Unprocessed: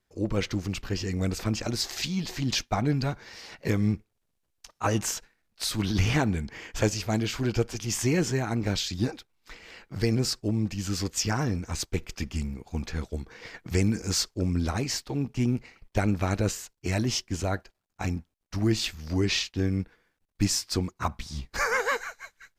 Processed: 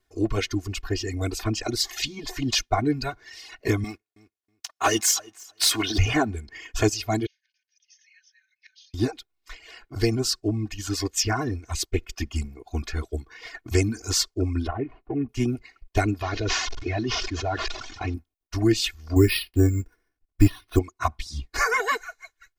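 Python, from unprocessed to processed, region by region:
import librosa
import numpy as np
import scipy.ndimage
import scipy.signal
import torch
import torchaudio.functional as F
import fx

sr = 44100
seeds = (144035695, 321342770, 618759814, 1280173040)

y = fx.chain(x, sr, fx.highpass(hz=720.0, slope=6),
    fx.leveller(passes=2),
    fx.echo_feedback(ms=321, feedback_pct=17, wet_db=-15.5), at=(3.84, 5.98))
y = fx.chain(y, sr, fx.brickwall_bandpass(low_hz=1500.0, high_hz=6700.0),
    fx.gate_flip(shuts_db=-35.0, range_db=-26), at=(7.26, 8.94))
y = fx.chain(y, sr, fx.median_filter(points=25),
    fx.lowpass(hz=2300.0, slope=24), at=(14.67, 15.29))
y = fx.chain(y, sr, fx.delta_mod(bps=32000, step_db=-40.5),
    fx.low_shelf(hz=450.0, db=-3.5),
    fx.sustainer(db_per_s=26.0), at=(16.22, 18.14))
y = fx.chain(y, sr, fx.low_shelf(hz=330.0, db=7.0),
    fx.resample_bad(factor=6, down='filtered', up='hold'), at=(19.16, 20.79))
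y = fx.dereverb_blind(y, sr, rt60_s=1.4)
y = y + 0.94 * np.pad(y, (int(2.8 * sr / 1000.0), 0))[:len(y)]
y = y * 10.0 ** (1.5 / 20.0)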